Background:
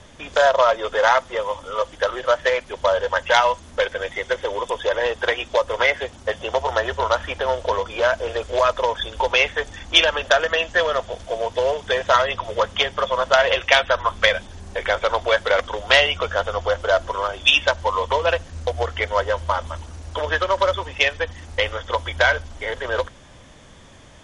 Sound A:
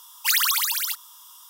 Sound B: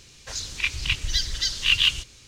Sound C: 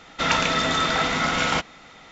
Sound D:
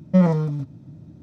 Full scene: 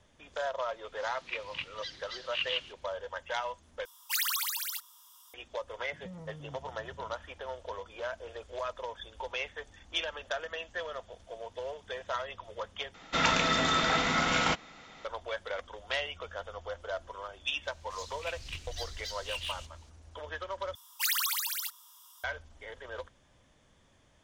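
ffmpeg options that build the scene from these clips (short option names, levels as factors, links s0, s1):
-filter_complex "[2:a]asplit=2[s0][s1];[1:a]asplit=2[s2][s3];[0:a]volume=0.119[s4];[s0]highpass=200,lowpass=2900[s5];[4:a]acompressor=threshold=0.0282:ratio=6:attack=3.2:release=140:knee=1:detection=peak[s6];[s1]asoftclip=type=tanh:threshold=0.119[s7];[s4]asplit=4[s8][s9][s10][s11];[s8]atrim=end=3.854[s12];[s2]atrim=end=1.49,asetpts=PTS-STARTPTS,volume=0.316[s13];[s9]atrim=start=5.336:end=12.944[s14];[3:a]atrim=end=2.11,asetpts=PTS-STARTPTS,volume=0.562[s15];[s10]atrim=start=15.046:end=20.754[s16];[s3]atrim=end=1.49,asetpts=PTS-STARTPTS,volume=0.355[s17];[s11]atrim=start=22.236[s18];[s5]atrim=end=2.27,asetpts=PTS-STARTPTS,volume=0.299,afade=t=in:d=0.004:c=hsin,afade=t=out:st=2.266:d=0.004:c=hsin,adelay=690[s19];[s6]atrim=end=1.22,asetpts=PTS-STARTPTS,volume=0.237,afade=t=in:d=0.004:c=hsin,afade=t=out:st=1.216:d=0.004:c=hsin,adelay=5920[s20];[s7]atrim=end=2.27,asetpts=PTS-STARTPTS,volume=0.2,afade=t=in:d=0.004:c=hsin,afade=t=out:st=2.266:d=0.004:c=hsin,adelay=17630[s21];[s12][s13]acrossfade=d=0.004:c1=hsin:c2=hsin[s22];[s22][s14]acrossfade=d=0.004:c1=hsin:c2=hsin[s23];[s23][s15]acrossfade=d=0.004:c1=hsin:c2=hsin[s24];[s24][s16]acrossfade=d=0.004:c1=hsin:c2=hsin[s25];[s25][s17]acrossfade=d=0.004:c1=hsin:c2=hsin[s26];[s26][s18]acrossfade=d=0.004:c1=hsin:c2=hsin[s27];[s27][s19][s20][s21]amix=inputs=4:normalize=0"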